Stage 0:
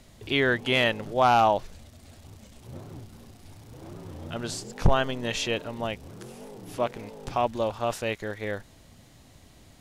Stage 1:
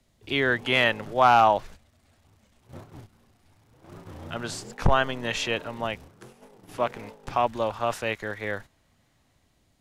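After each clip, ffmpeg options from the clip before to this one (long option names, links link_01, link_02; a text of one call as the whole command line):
ffmpeg -i in.wav -filter_complex "[0:a]agate=range=-12dB:threshold=-41dB:ratio=16:detection=peak,acrossover=split=140|890|2300[link_01][link_02][link_03][link_04];[link_03]dynaudnorm=framelen=100:gausssize=11:maxgain=7.5dB[link_05];[link_01][link_02][link_05][link_04]amix=inputs=4:normalize=0,volume=-1.5dB" out.wav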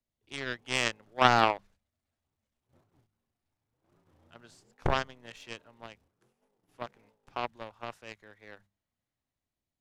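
ffmpeg -i in.wav -af "aeval=exprs='0.562*(cos(1*acos(clip(val(0)/0.562,-1,1)))-cos(1*PI/2))+0.178*(cos(3*acos(clip(val(0)/0.562,-1,1)))-cos(3*PI/2))':channel_layout=same,bandreject=frequency=50:width_type=h:width=6,bandreject=frequency=100:width_type=h:width=6,bandreject=frequency=150:width_type=h:width=6,bandreject=frequency=200:width_type=h:width=6,volume=2.5dB" out.wav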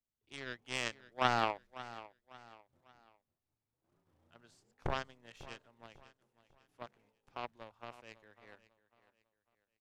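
ffmpeg -i in.wav -af "aecho=1:1:548|1096|1644:0.15|0.0539|0.0194,volume=-8.5dB" out.wav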